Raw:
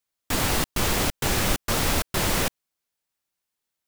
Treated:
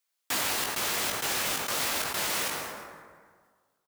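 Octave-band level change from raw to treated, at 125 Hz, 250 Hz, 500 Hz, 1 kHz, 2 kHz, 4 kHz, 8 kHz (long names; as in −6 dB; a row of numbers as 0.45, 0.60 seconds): −18.5, −13.0, −7.5, −4.0, −2.5, −2.5, −2.5 decibels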